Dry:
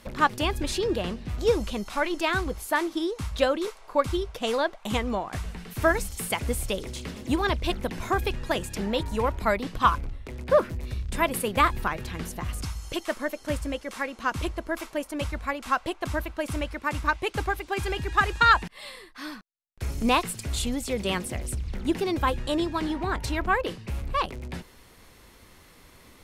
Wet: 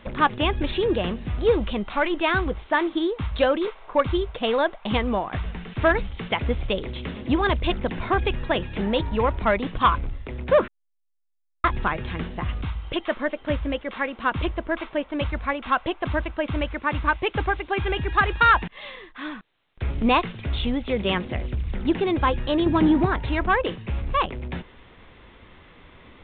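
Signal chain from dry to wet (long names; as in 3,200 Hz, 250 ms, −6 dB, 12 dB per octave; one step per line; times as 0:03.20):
0:22.66–0:23.06: parametric band 170 Hz +11 dB 3 octaves
soft clipping −14 dBFS, distortion −17 dB
0:10.68–0:11.64: silence
level +4.5 dB
A-law companding 64 kbit/s 8,000 Hz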